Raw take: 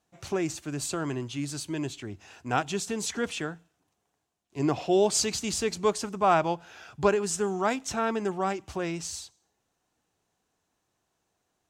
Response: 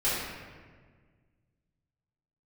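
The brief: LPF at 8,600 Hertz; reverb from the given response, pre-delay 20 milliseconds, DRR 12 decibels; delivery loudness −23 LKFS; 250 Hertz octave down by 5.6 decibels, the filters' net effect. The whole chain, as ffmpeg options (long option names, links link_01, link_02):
-filter_complex "[0:a]lowpass=8600,equalizer=frequency=250:width_type=o:gain=-8.5,asplit=2[link_01][link_02];[1:a]atrim=start_sample=2205,adelay=20[link_03];[link_02][link_03]afir=irnorm=-1:irlink=0,volume=-23.5dB[link_04];[link_01][link_04]amix=inputs=2:normalize=0,volume=7.5dB"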